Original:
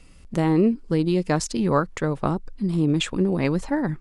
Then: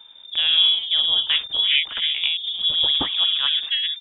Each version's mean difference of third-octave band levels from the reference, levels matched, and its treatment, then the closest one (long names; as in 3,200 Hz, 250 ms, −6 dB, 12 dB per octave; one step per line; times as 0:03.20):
16.5 dB: delay with pitch and tempo change per echo 154 ms, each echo +2 semitones, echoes 3, each echo −6 dB
voice inversion scrambler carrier 3,600 Hz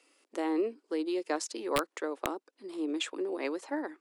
7.0 dB: Butterworth high-pass 300 Hz 48 dB per octave
wrap-around overflow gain 9.5 dB
level −8 dB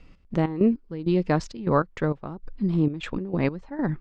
5.0 dB: gate pattern "x.x.x..xx" 99 BPM −12 dB
high-frequency loss of the air 190 metres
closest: third